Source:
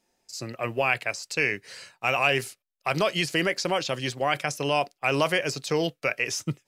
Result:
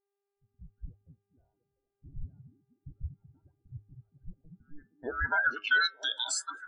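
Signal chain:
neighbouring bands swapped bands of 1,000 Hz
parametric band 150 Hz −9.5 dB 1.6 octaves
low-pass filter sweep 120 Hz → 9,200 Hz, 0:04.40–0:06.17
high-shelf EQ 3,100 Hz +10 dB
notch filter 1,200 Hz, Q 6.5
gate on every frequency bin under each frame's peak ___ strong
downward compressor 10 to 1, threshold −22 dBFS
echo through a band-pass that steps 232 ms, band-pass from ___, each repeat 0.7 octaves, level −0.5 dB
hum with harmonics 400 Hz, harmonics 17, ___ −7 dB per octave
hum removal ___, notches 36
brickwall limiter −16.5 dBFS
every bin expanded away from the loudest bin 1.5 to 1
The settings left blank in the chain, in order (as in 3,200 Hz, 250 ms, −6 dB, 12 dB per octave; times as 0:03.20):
−20 dB, 180 Hz, −68 dBFS, 103.1 Hz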